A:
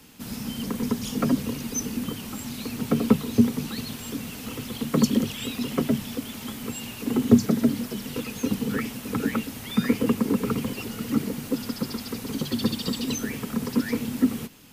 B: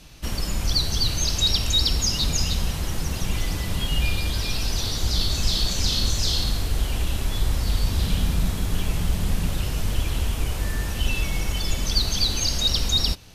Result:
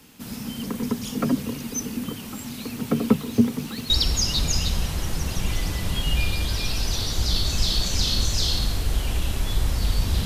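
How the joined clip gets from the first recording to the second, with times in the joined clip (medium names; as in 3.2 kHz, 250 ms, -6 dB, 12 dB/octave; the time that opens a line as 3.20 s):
A
3.14–3.90 s: self-modulated delay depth 0.071 ms
3.90 s: go over to B from 1.75 s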